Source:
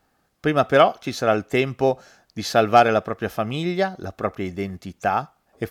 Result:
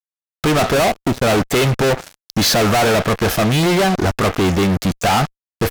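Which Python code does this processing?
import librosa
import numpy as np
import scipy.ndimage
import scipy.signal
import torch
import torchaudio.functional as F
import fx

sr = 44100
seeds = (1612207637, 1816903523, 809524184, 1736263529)

y = fx.median_filter(x, sr, points=41, at=(0.72, 1.21), fade=0.02)
y = fx.fuzz(y, sr, gain_db=40.0, gate_db=-44.0)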